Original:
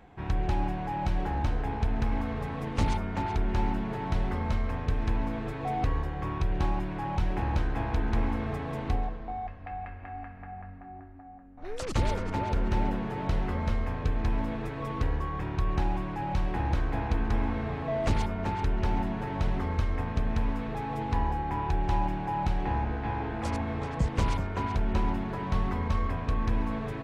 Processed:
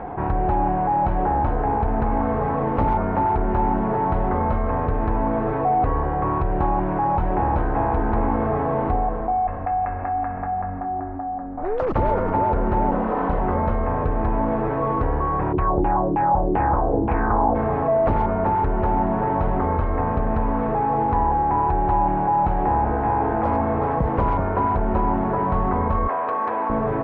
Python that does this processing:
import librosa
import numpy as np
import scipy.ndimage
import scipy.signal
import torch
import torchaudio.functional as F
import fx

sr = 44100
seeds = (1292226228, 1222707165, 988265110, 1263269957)

y = fx.lower_of_two(x, sr, delay_ms=3.9, at=(12.91, 13.41))
y = fx.filter_lfo_lowpass(y, sr, shape='saw_down', hz=fx.line((15.52, 4.3), (17.54, 1.2)), low_hz=280.0, high_hz=2900.0, q=3.1, at=(15.52, 17.54), fade=0.02)
y = fx.highpass(y, sr, hz=560.0, slope=12, at=(26.08, 26.7))
y = scipy.signal.sosfilt(scipy.signal.butter(2, 1300.0, 'lowpass', fs=sr, output='sos'), y)
y = fx.peak_eq(y, sr, hz=780.0, db=11.0, octaves=2.7)
y = fx.env_flatten(y, sr, amount_pct=50)